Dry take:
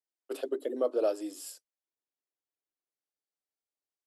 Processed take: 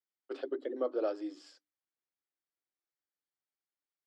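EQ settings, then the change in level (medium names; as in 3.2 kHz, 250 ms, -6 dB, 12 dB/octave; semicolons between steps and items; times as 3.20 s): cabinet simulation 140–4300 Hz, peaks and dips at 220 Hz -7 dB, 440 Hz -6 dB, 640 Hz -7 dB, 980 Hz -4 dB, 2.7 kHz -8 dB, 3.8 kHz -6 dB; hum notches 50/100/150/200/250/300 Hz; +1.0 dB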